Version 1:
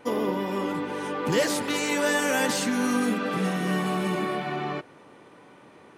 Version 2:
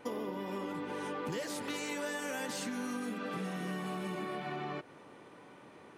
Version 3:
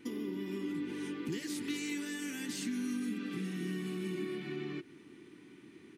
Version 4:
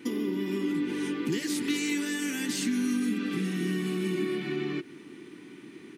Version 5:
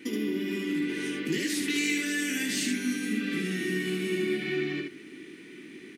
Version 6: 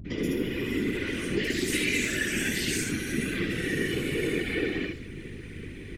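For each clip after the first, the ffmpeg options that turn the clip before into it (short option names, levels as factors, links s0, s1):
-af "acompressor=threshold=0.0251:ratio=6,volume=0.668"
-af "firequalizer=gain_entry='entry(110,0);entry(350,8);entry(530,-20);entry(2000,1)':delay=0.05:min_phase=1,volume=0.841"
-af "highpass=130,volume=2.66"
-filter_complex "[0:a]equalizer=f=125:t=o:w=1:g=-7,equalizer=f=1000:t=o:w=1:g=-11,equalizer=f=2000:t=o:w=1:g=6,asplit=2[s0][s1];[s1]aecho=0:1:19|75:0.473|0.668[s2];[s0][s2]amix=inputs=2:normalize=0"
-filter_complex "[0:a]acrossover=split=200|5100[s0][s1][s2];[s1]adelay=50[s3];[s2]adelay=180[s4];[s0][s3][s4]amix=inputs=3:normalize=0,aeval=exprs='val(0)+0.00794*(sin(2*PI*50*n/s)+sin(2*PI*2*50*n/s)/2+sin(2*PI*3*50*n/s)/3+sin(2*PI*4*50*n/s)/4+sin(2*PI*5*50*n/s)/5)':c=same,afftfilt=real='hypot(re,im)*cos(2*PI*random(0))':imag='hypot(re,im)*sin(2*PI*random(1))':win_size=512:overlap=0.75,volume=2.66"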